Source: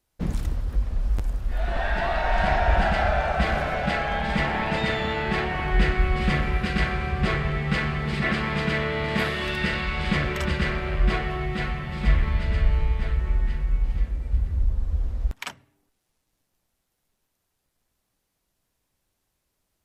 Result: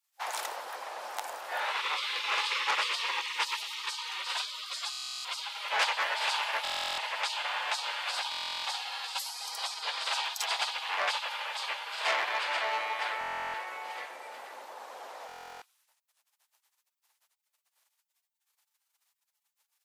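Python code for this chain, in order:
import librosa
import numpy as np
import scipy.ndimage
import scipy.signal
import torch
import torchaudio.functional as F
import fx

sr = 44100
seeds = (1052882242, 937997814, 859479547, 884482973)

y = fx.spec_gate(x, sr, threshold_db=-25, keep='weak')
y = scipy.signal.sosfilt(scipy.signal.butter(4, 590.0, 'highpass', fs=sr, output='sos'), y)
y = fx.peak_eq(y, sr, hz=880.0, db=7.0, octaves=0.42)
y = fx.buffer_glitch(y, sr, at_s=(4.9, 6.63, 8.3, 13.19, 15.27), block=1024, repeats=14)
y = fx.transformer_sat(y, sr, knee_hz=3700.0)
y = y * 10.0 ** (8.5 / 20.0)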